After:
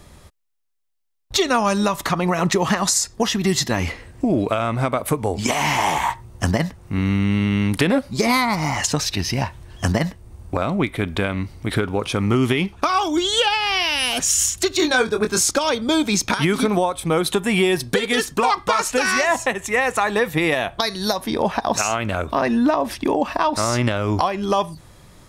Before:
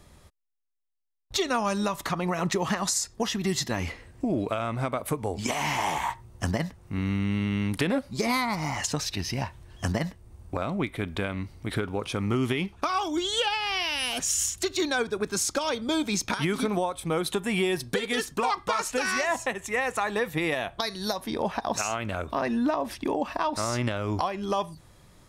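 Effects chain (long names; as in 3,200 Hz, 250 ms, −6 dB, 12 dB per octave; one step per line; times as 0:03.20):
0:14.77–0:15.51: double-tracking delay 23 ms −6 dB
level +8 dB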